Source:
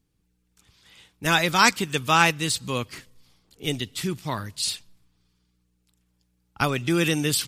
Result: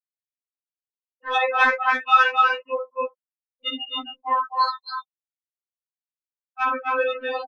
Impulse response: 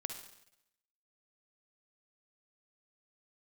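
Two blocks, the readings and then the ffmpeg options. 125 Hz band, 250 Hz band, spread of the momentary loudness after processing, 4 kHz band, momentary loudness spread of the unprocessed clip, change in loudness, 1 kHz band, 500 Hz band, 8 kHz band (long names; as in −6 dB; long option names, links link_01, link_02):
below −40 dB, −14.0 dB, 15 LU, −4.0 dB, 12 LU, +1.5 dB, +5.5 dB, +2.0 dB, below −25 dB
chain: -filter_complex "[0:a]asplit=2[link_01][link_02];[link_02]acrusher=samples=10:mix=1:aa=0.000001:lfo=1:lforange=16:lforate=0.88,volume=-4dB[link_03];[link_01][link_03]amix=inputs=2:normalize=0,lowpass=frequency=1900:poles=1,aecho=1:1:55.39|259.5|291.5:0.631|0.708|0.631,dynaudnorm=framelen=280:gausssize=3:maxgain=6.5dB,highpass=660,afftfilt=real='re*gte(hypot(re,im),0.126)':imag='im*gte(hypot(re,im),0.126)':win_size=1024:overlap=0.75,acontrast=38,afftfilt=real='re*3.46*eq(mod(b,12),0)':imag='im*3.46*eq(mod(b,12),0)':win_size=2048:overlap=0.75,volume=-2dB"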